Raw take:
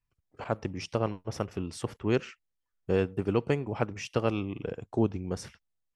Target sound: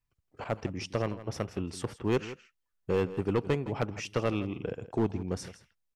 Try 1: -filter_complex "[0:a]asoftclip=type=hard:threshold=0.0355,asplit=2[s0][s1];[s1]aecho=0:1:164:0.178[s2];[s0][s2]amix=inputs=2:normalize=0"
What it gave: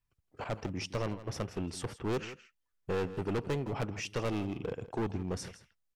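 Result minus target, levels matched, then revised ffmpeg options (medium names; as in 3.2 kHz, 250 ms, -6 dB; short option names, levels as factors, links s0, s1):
hard clipper: distortion +8 dB
-filter_complex "[0:a]asoftclip=type=hard:threshold=0.0944,asplit=2[s0][s1];[s1]aecho=0:1:164:0.178[s2];[s0][s2]amix=inputs=2:normalize=0"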